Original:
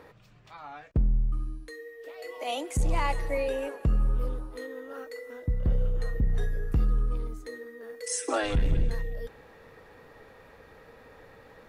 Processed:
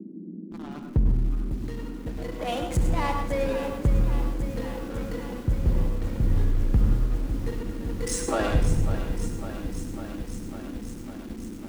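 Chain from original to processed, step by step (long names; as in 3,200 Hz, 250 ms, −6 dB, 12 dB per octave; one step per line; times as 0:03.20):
parametric band 110 Hz +4.5 dB 1.2 octaves
in parallel at 0 dB: downward compressor 12 to 1, threshold −37 dBFS, peak gain reduction 19 dB
on the sum: slack as between gear wheels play −28.5 dBFS
noise in a band 180–340 Hz −40 dBFS
flutter between parallel walls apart 11.9 metres, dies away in 0.3 s
on a send at −5.5 dB: convolution reverb RT60 0.40 s, pre-delay 93 ms
on the sum: feedback echo at a low word length 551 ms, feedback 80%, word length 7 bits, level −11 dB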